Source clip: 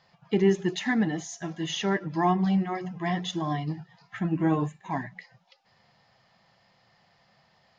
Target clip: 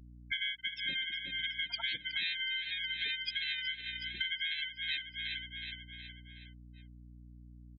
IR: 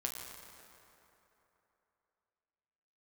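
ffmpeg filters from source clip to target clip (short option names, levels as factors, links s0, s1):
-filter_complex "[0:a]afftfilt=real='real(if(lt(b,272),68*(eq(floor(b/68),0)*1+eq(floor(b/68),1)*3+eq(floor(b/68),2)*0+eq(floor(b/68),3)*2)+mod(b,68),b),0)':imag='imag(if(lt(b,272),68*(eq(floor(b/68),0)*1+eq(floor(b/68),1)*3+eq(floor(b/68),2)*0+eq(floor(b/68),3)*2)+mod(b,68),b),0)':win_size=2048:overlap=0.75,afftfilt=real='re*gte(hypot(re,im),0.126)':imag='im*gte(hypot(re,im),0.126)':win_size=1024:overlap=0.75,highshelf=f=3100:g=8,aecho=1:1:369|738|1107|1476|1845:0.158|0.0856|0.0462|0.025|0.0135,acrossover=split=120|3000[s0][s1][s2];[s1]acompressor=threshold=0.0355:ratio=2.5[s3];[s0][s3][s2]amix=inputs=3:normalize=0,highpass=65,bandreject=f=306.1:t=h:w=4,bandreject=f=612.2:t=h:w=4,bandreject=f=918.3:t=h:w=4,bandreject=f=1224.4:t=h:w=4,bandreject=f=1530.5:t=h:w=4,bandreject=f=1836.6:t=h:w=4,bandreject=f=2142.7:t=h:w=4,asplit=3[s4][s5][s6];[s5]asetrate=22050,aresample=44100,atempo=2,volume=0.562[s7];[s6]asetrate=29433,aresample=44100,atempo=1.49831,volume=1[s8];[s4][s7][s8]amix=inputs=3:normalize=0,aeval=exprs='val(0)+0.00447*(sin(2*PI*60*n/s)+sin(2*PI*2*60*n/s)/2+sin(2*PI*3*60*n/s)/3+sin(2*PI*4*60*n/s)/4+sin(2*PI*5*60*n/s)/5)':c=same,acompressor=threshold=0.0282:ratio=12,adynamicequalizer=threshold=0.00631:dfrequency=2300:dqfactor=0.7:tfrequency=2300:tqfactor=0.7:attack=5:release=100:ratio=0.375:range=2:mode=boostabove:tftype=highshelf,volume=0.596"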